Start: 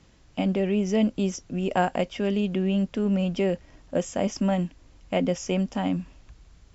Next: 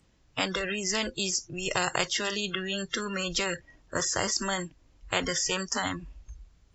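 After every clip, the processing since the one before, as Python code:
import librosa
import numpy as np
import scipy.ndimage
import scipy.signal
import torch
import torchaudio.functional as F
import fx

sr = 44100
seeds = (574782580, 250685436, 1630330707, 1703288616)

y = fx.noise_reduce_blind(x, sr, reduce_db=29)
y = fx.spectral_comp(y, sr, ratio=4.0)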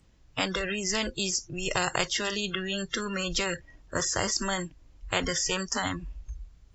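y = fx.low_shelf(x, sr, hz=82.0, db=8.5)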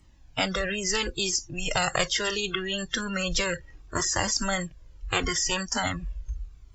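y = fx.comb_cascade(x, sr, direction='falling', hz=0.74)
y = y * 10.0 ** (6.5 / 20.0)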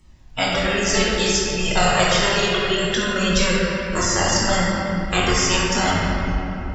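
y = fx.dmg_crackle(x, sr, seeds[0], per_s=10.0, level_db=-55.0)
y = fx.room_shoebox(y, sr, seeds[1], volume_m3=220.0, walls='hard', distance_m=1.0)
y = y * 10.0 ** (2.0 / 20.0)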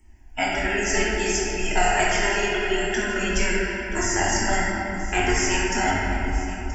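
y = fx.fixed_phaser(x, sr, hz=780.0, stages=8)
y = y + 10.0 ** (-16.0 / 20.0) * np.pad(y, (int(977 * sr / 1000.0), 0))[:len(y)]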